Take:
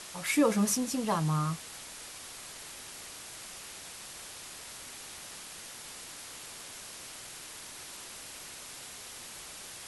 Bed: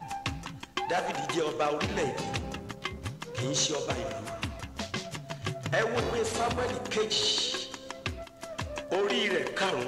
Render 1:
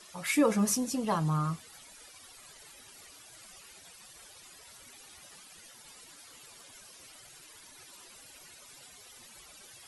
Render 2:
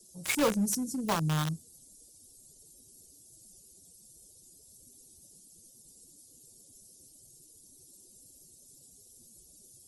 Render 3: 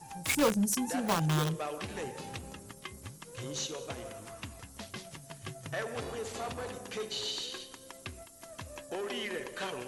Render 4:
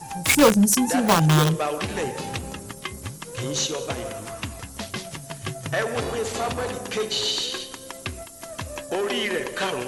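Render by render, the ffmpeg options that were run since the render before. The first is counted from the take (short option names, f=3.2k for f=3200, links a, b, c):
-af "afftdn=nr=14:nf=-46"
-filter_complex "[0:a]acrossover=split=210|430|5700[a][b][c][d];[b]asoftclip=type=hard:threshold=-33dB[e];[c]acrusher=bits=4:mix=0:aa=0.000001[f];[a][e][f][d]amix=inputs=4:normalize=0"
-filter_complex "[1:a]volume=-9dB[a];[0:a][a]amix=inputs=2:normalize=0"
-af "volume=11.5dB"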